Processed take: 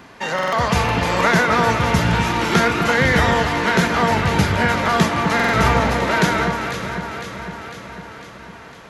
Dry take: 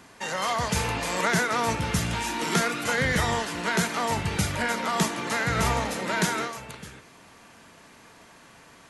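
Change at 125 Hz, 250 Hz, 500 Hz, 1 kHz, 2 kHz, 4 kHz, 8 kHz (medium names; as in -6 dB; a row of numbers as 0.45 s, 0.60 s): +10.0 dB, +10.0 dB, +10.0 dB, +9.5 dB, +9.0 dB, +6.5 dB, 0.0 dB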